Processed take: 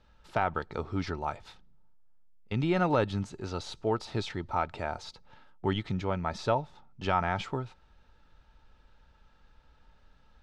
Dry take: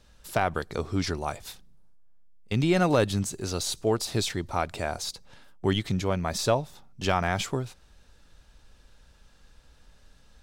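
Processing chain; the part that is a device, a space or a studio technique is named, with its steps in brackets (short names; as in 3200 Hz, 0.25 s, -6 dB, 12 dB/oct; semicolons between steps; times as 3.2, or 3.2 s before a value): inside a cardboard box (LPF 3400 Hz 12 dB/oct; small resonant body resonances 890/1300 Hz, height 10 dB); gain -4.5 dB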